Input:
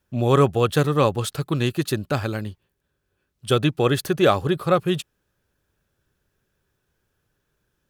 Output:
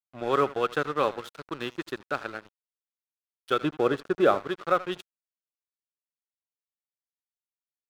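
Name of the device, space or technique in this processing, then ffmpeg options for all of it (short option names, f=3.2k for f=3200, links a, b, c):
pocket radio on a weak battery: -filter_complex "[0:a]asettb=1/sr,asplit=3[a][b][c];[a]atrim=end=3.614[d];[b]atrim=start=3.61:end=4.4,asetpts=PTS-STARTPTS,afade=t=in:d=0.004:c=qsin,afade=t=out:st=0.786:d=0.004:c=qsin,tiltshelf=f=910:g=6[e];[c]atrim=start=4.396[f];[d][e]acrossfade=d=0.004:c1=hsin:c2=qsin[g];[g][f]acrossfade=d=0.004:c1=qsin:c2=hsin,highpass=330,lowpass=3.8k,aecho=1:1:80|160:0.178|0.032,aeval=exprs='sgn(val(0))*max(abs(val(0))-0.0178,0)':c=same,equalizer=f=1.4k:t=o:w=0.35:g=7.5,volume=-5dB"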